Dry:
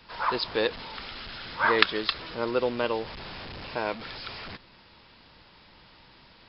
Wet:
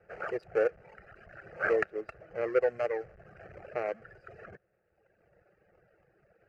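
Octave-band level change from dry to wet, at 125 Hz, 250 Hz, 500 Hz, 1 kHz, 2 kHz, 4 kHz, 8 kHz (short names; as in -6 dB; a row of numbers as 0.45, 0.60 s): -9.0 dB, -9.0 dB, -0.5 dB, -10.5 dB, -7.5 dB, under -25 dB, n/a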